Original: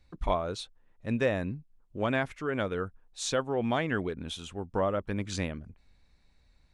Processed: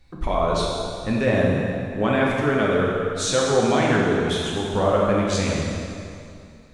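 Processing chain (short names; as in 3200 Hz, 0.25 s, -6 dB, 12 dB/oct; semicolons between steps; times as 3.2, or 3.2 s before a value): limiter -21 dBFS, peak gain reduction 7 dB; plate-style reverb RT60 2.5 s, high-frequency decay 0.85×, pre-delay 0 ms, DRR -4 dB; gain +7 dB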